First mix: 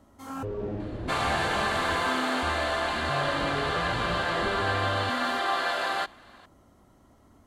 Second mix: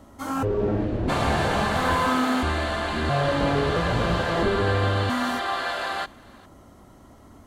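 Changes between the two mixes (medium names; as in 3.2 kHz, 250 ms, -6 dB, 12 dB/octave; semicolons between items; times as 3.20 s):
speech: unmuted; first sound +9.0 dB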